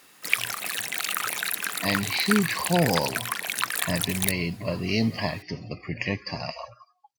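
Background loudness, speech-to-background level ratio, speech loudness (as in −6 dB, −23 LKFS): −27.5 LKFS, −0.5 dB, −28.0 LKFS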